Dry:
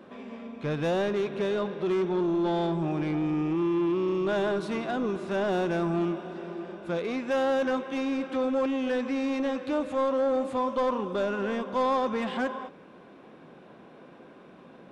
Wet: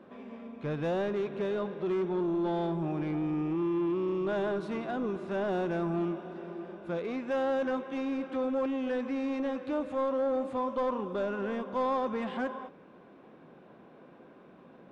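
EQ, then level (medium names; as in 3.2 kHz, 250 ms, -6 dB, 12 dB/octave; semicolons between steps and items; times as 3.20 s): treble shelf 3.3 kHz -9.5 dB; -3.5 dB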